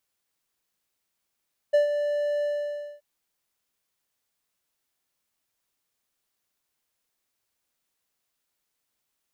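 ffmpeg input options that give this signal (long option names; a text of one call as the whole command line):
ffmpeg -f lavfi -i "aevalsrc='0.224*(1-4*abs(mod(586*t+0.25,1)-0.5))':duration=1.277:sample_rate=44100,afade=type=in:duration=0.015,afade=type=out:start_time=0.015:duration=0.123:silence=0.376,afade=type=out:start_time=0.7:duration=0.577" out.wav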